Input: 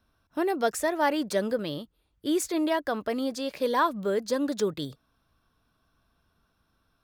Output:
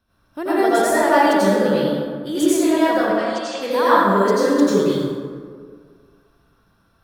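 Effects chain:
0:03.04–0:03.60: Chebyshev band-pass filter 700–7,800 Hz, order 3
convolution reverb RT60 1.9 s, pre-delay 77 ms, DRR −11.5 dB
level −1 dB

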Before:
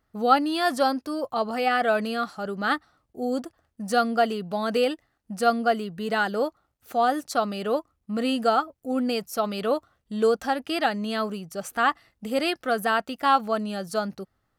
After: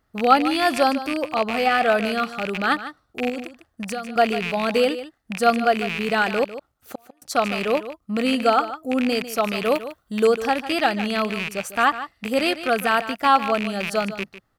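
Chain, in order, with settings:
loose part that buzzes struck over −45 dBFS, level −19 dBFS
0:03.29–0:04.16: downward compressor 12 to 1, threshold −30 dBFS, peak gain reduction 14.5 dB
0:06.44–0:07.22: gate with flip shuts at −22 dBFS, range −40 dB
0:09.65–0:10.25: high-shelf EQ 10,000 Hz +12 dB
on a send: single-tap delay 150 ms −13 dB
on the sum: level +3.5 dB

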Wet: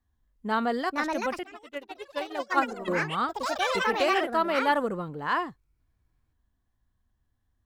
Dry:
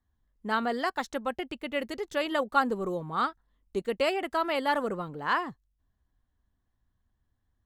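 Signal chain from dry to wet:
harmonic and percussive parts rebalanced percussive −6 dB
delay with pitch and tempo change per echo 592 ms, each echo +5 semitones, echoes 3
0:01.43–0:02.88: expander for the loud parts 2.5 to 1, over −37 dBFS
level +3 dB

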